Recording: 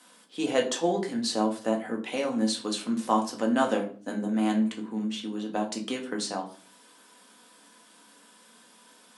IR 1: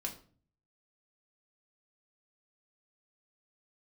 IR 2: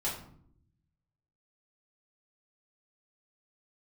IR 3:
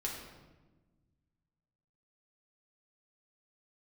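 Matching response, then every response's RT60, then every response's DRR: 1; 0.45 s, 0.65 s, 1.2 s; 1.0 dB, -8.0 dB, -3.0 dB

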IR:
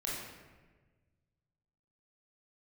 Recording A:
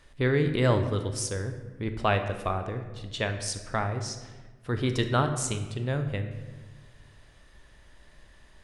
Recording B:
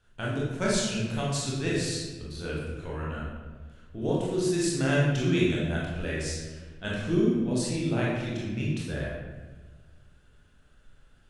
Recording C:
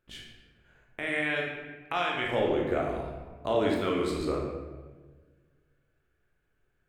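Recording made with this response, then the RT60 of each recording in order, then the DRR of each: B; 1.4 s, 1.4 s, 1.4 s; 6.5 dB, -6.5 dB, -1.5 dB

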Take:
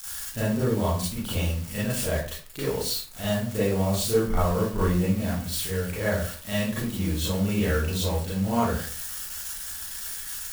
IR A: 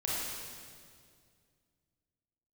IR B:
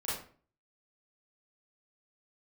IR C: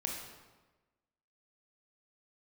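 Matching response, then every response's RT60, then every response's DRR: B; 2.1 s, 0.45 s, 1.2 s; -7.0 dB, -10.0 dB, -0.5 dB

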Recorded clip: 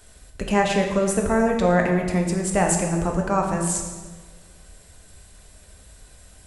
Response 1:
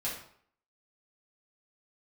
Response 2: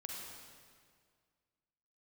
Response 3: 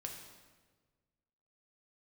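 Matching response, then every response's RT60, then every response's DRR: 3; 0.60 s, 2.0 s, 1.4 s; -8.0 dB, -1.5 dB, 1.0 dB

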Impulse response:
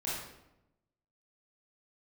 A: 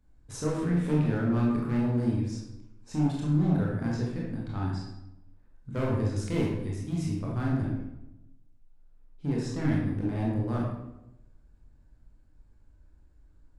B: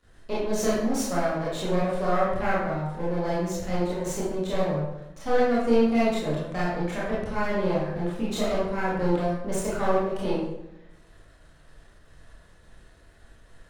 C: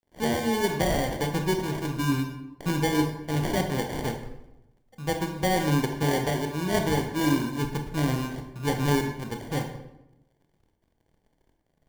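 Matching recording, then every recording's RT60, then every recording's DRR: B; 0.90 s, 0.90 s, 0.90 s; -4.5 dB, -8.5 dB, 4.0 dB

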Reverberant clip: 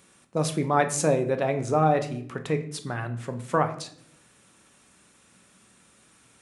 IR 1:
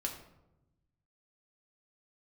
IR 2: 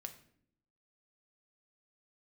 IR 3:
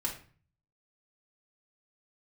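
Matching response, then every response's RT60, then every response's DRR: 2; 0.95 s, 0.65 s, 0.40 s; 0.5 dB, 6.5 dB, -5.0 dB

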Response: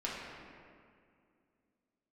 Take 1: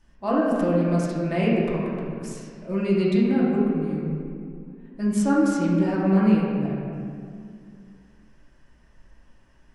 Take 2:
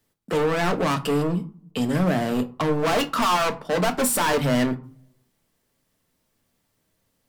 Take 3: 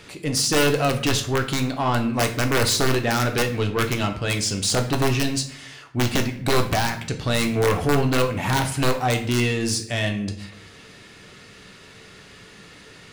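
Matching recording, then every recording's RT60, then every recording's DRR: 1; 2.3 s, 0.45 s, 0.65 s; -6.5 dB, 6.5 dB, 4.0 dB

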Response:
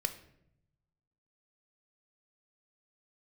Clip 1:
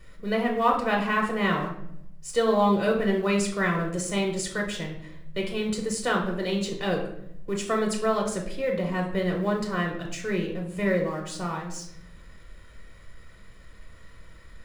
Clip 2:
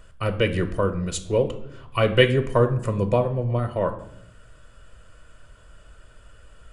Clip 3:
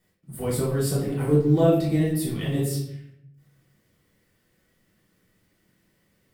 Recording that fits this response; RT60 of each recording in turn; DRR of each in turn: 2; 0.75 s, 0.75 s, 0.75 s; 0.5 dB, 8.0 dB, -8.0 dB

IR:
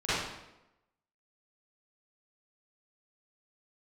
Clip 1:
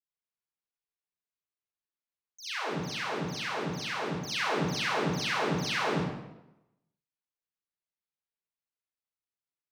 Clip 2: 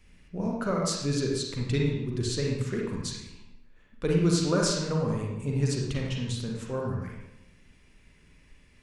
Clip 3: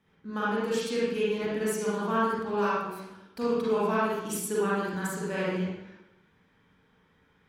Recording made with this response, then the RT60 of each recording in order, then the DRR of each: 1; 0.95 s, 0.95 s, 0.95 s; -15.5 dB, -2.0 dB, -8.0 dB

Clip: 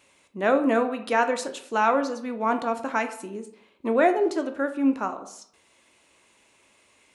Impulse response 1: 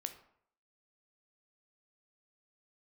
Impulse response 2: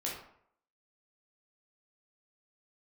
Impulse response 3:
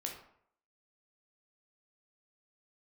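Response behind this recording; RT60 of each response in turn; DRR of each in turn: 1; 0.65 s, 0.65 s, 0.65 s; 7.5 dB, -4.5 dB, 0.5 dB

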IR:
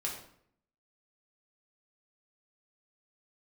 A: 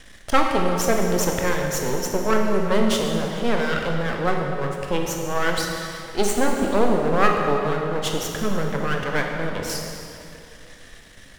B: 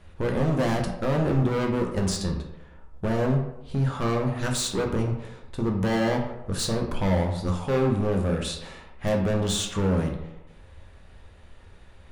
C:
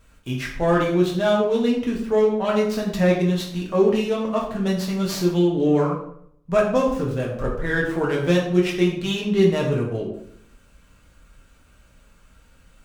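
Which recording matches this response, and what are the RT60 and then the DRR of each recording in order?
C; 2.7 s, 0.90 s, 0.65 s; 1.0 dB, 1.0 dB, -3.0 dB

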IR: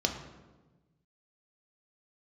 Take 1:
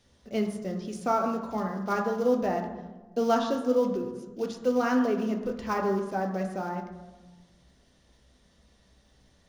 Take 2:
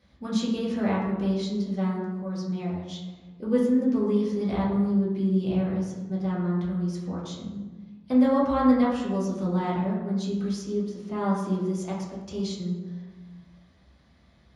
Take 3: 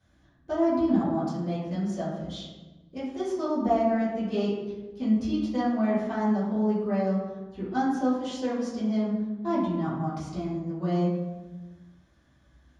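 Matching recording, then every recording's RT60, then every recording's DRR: 1; 1.2 s, 1.2 s, 1.2 s; 3.0 dB, -6.5 dB, -12.5 dB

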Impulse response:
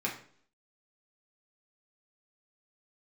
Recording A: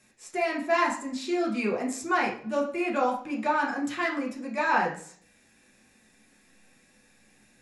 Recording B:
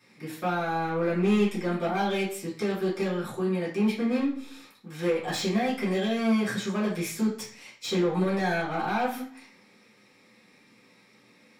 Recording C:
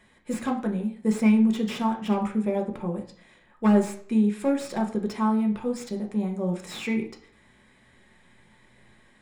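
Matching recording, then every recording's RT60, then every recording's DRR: A; 0.55 s, 0.55 s, 0.55 s; -3.5 dB, -12.5 dB, 1.5 dB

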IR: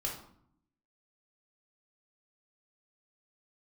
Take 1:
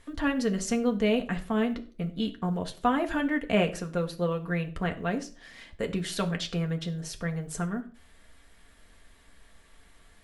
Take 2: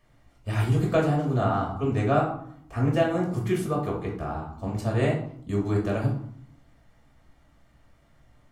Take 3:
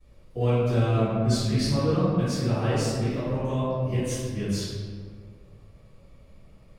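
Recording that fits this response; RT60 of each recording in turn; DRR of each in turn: 2; 0.40 s, 0.65 s, 1.9 s; 3.5 dB, -2.5 dB, -17.5 dB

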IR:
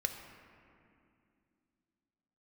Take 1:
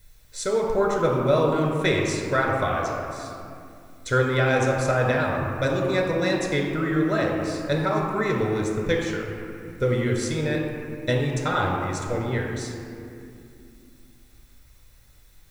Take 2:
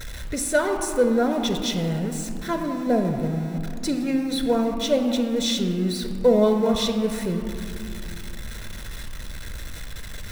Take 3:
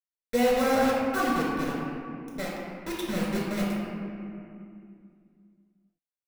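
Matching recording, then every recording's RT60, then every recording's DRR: 2; 2.5 s, 2.5 s, 2.5 s; -0.5 dB, 5.0 dB, -5.5 dB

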